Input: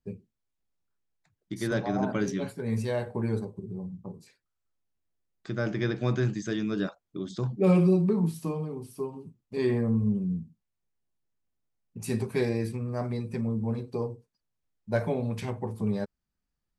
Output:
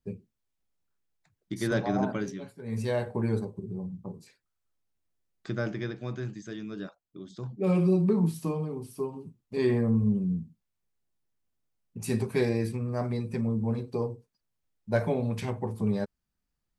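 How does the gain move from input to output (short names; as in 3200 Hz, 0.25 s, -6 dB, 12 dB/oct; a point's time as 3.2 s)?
2 s +1 dB
2.53 s -11.5 dB
2.87 s +1 dB
5.5 s +1 dB
6 s -8.5 dB
7.35 s -8.5 dB
8.11 s +1 dB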